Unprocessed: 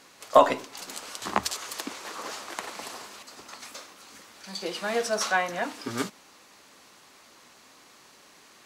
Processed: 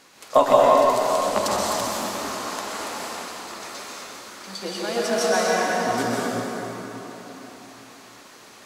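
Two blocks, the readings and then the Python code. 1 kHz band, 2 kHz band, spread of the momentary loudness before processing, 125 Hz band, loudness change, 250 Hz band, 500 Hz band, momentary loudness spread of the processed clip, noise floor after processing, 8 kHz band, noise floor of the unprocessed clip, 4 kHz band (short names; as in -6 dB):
+6.5 dB, +3.5 dB, 22 LU, +9.0 dB, +6.0 dB, +8.0 dB, +8.0 dB, 20 LU, -47 dBFS, +6.0 dB, -55 dBFS, +5.0 dB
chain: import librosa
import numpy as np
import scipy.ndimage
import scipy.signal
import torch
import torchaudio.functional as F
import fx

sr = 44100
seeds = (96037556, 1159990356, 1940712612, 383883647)

y = fx.dynamic_eq(x, sr, hz=2000.0, q=0.79, threshold_db=-41.0, ratio=4.0, max_db=-5)
y = fx.rev_plate(y, sr, seeds[0], rt60_s=4.1, hf_ratio=0.6, predelay_ms=110, drr_db=-6.0)
y = y * 10.0 ** (1.0 / 20.0)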